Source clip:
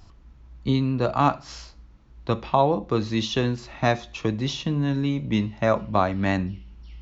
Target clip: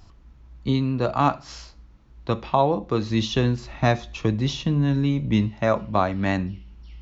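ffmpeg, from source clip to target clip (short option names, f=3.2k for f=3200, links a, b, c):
-filter_complex "[0:a]asettb=1/sr,asplit=3[a][b][c];[a]atrim=end=3.104[d];[b]atrim=start=3.1:end=5.49,asetpts=PTS-STARTPTS,afade=t=in:d=0.004:c=qsin,afade=t=out:st=2.386:d=0.004:c=qsin,lowshelf=f=140:g=8[e];[c]atrim=start=5.486[f];[d][e]acrossfade=d=0.004:c1=hsin:c2=qsin[g];[g][f]acrossfade=d=0.004:c1=qsin:c2=hsin"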